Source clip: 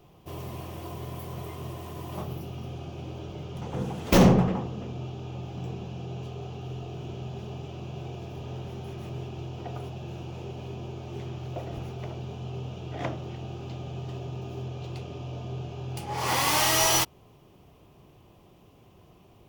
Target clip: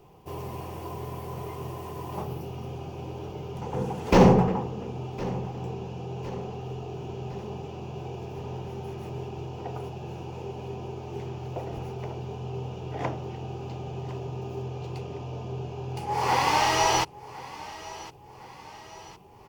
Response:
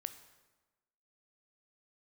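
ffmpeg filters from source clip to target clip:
-filter_complex "[0:a]acrossover=split=5800[a][b];[b]acompressor=threshold=-48dB:ratio=4:attack=1:release=60[c];[a][c]amix=inputs=2:normalize=0,superequalizer=7b=1.78:9b=2:13b=0.631,aecho=1:1:1059|2118|3177|4236:0.133|0.0693|0.0361|0.0188"

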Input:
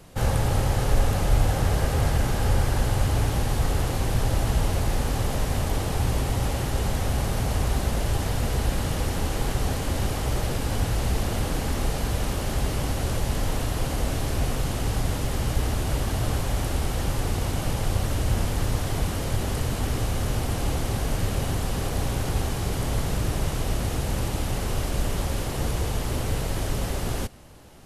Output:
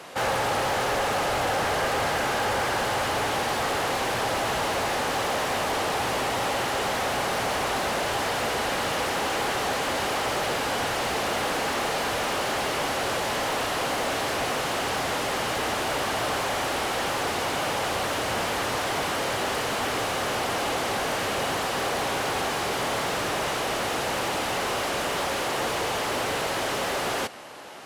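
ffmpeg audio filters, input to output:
-filter_complex "[0:a]highpass=f=420:p=1,asplit=2[a][b];[b]highpass=f=720:p=1,volume=22dB,asoftclip=type=tanh:threshold=-16dB[c];[a][c]amix=inputs=2:normalize=0,lowpass=f=2.3k:p=1,volume=-6dB"

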